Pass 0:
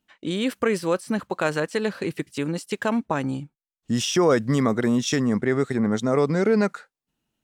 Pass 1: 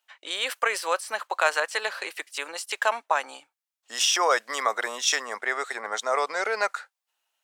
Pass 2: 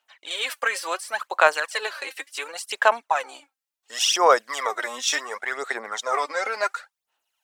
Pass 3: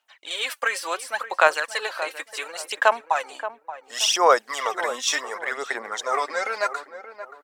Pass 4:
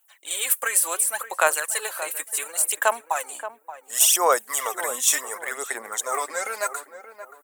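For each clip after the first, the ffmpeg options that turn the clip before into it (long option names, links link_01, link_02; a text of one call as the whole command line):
ffmpeg -i in.wav -af "highpass=frequency=680:width=0.5412,highpass=frequency=680:width=1.3066,volume=4.5dB" out.wav
ffmpeg -i in.wav -af "aphaser=in_gain=1:out_gain=1:delay=3.8:decay=0.63:speed=0.7:type=sinusoidal,volume=-1.5dB" out.wav
ffmpeg -i in.wav -filter_complex "[0:a]asplit=2[link_01][link_02];[link_02]adelay=577,lowpass=frequency=1000:poles=1,volume=-10dB,asplit=2[link_03][link_04];[link_04]adelay=577,lowpass=frequency=1000:poles=1,volume=0.36,asplit=2[link_05][link_06];[link_06]adelay=577,lowpass=frequency=1000:poles=1,volume=0.36,asplit=2[link_07][link_08];[link_08]adelay=577,lowpass=frequency=1000:poles=1,volume=0.36[link_09];[link_01][link_03][link_05][link_07][link_09]amix=inputs=5:normalize=0" out.wav
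ffmpeg -i in.wav -af "aexciter=amount=13.5:drive=4.7:freq=7400,volume=-3dB" out.wav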